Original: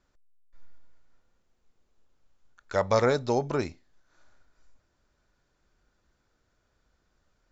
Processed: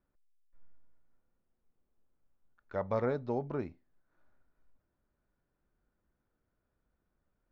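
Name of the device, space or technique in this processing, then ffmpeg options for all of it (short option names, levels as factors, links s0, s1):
phone in a pocket: -af "lowpass=3000,equalizer=f=210:t=o:w=1.4:g=4,highshelf=f=2300:g=-9.5,volume=0.355"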